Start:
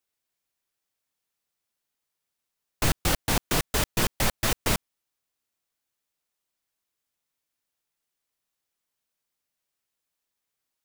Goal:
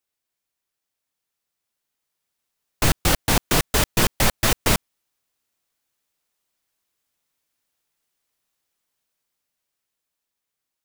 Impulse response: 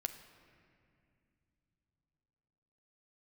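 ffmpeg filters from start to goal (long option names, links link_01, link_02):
-af "dynaudnorm=framelen=400:gausssize=11:maxgain=6.5dB"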